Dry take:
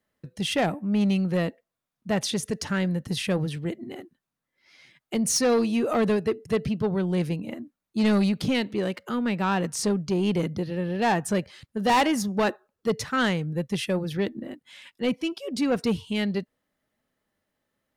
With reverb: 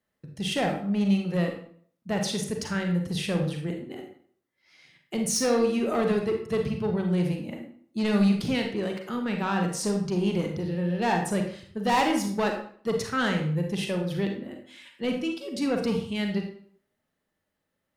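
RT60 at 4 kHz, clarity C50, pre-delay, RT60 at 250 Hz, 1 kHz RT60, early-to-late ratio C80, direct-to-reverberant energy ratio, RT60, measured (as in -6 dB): 0.45 s, 5.5 dB, 34 ms, 0.60 s, 0.55 s, 10.0 dB, 2.5 dB, 0.55 s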